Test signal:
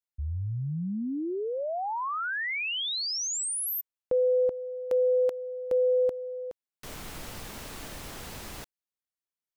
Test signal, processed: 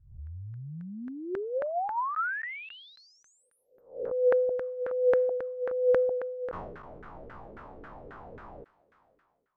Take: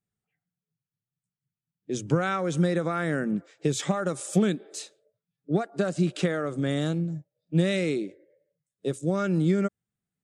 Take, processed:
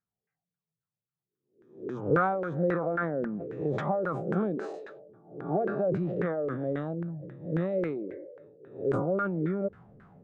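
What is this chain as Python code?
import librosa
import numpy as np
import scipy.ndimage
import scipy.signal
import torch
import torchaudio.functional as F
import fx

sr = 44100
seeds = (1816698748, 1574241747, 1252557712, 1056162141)

y = fx.spec_swells(x, sr, rise_s=0.57)
y = fx.filter_lfo_lowpass(y, sr, shape='saw_down', hz=3.7, low_hz=400.0, high_hz=1600.0, q=4.4)
y = fx.sustainer(y, sr, db_per_s=40.0)
y = y * 10.0 ** (-9.0 / 20.0)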